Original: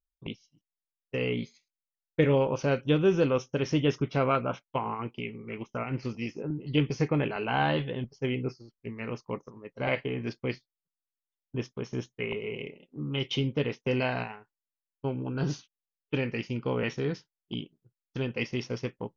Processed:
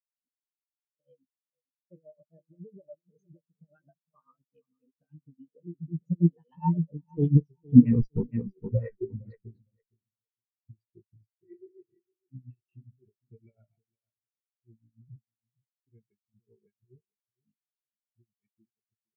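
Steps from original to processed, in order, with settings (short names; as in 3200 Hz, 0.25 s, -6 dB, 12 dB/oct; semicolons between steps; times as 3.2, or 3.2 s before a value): Doppler pass-by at 7.94, 44 m/s, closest 7.8 m; high shelf 4400 Hz +11 dB; in parallel at -2.5 dB: negative-ratio compressor -58 dBFS, ratio -0.5; on the sum: added harmonics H 4 -28 dB, 5 -37 dB, 8 -14 dB, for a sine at -20.5 dBFS; tremolo 7.2 Hz, depth 69%; on a send: feedback echo 0.46 s, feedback 46%, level -8 dB; on the sum: maximiser +32.5 dB; spectral expander 4:1; gain -1 dB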